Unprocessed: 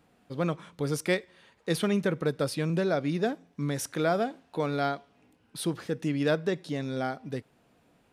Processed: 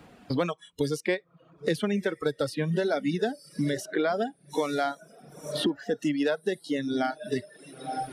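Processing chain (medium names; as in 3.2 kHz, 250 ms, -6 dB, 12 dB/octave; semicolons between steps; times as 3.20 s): on a send: echo that smears into a reverb 962 ms, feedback 40%, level -12.5 dB; on the sum: reverb removal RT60 0.76 s; treble shelf 9.1 kHz -7.5 dB; spectral noise reduction 19 dB; three bands compressed up and down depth 100%; trim +2 dB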